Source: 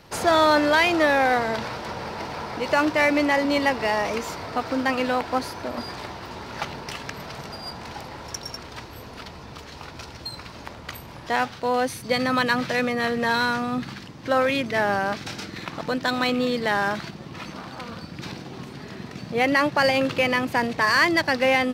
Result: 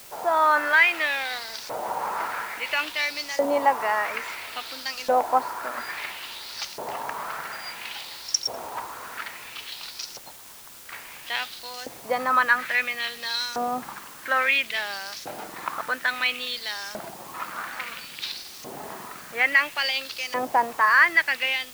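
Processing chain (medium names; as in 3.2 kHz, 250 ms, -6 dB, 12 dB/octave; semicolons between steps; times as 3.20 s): 10.18–10.92 s: gate -31 dBFS, range -22 dB; level rider gain up to 11.5 dB; LFO band-pass saw up 0.59 Hz 600–6500 Hz; in parallel at -6 dB: word length cut 6-bit, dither triangular; on the sum: trim -3.5 dB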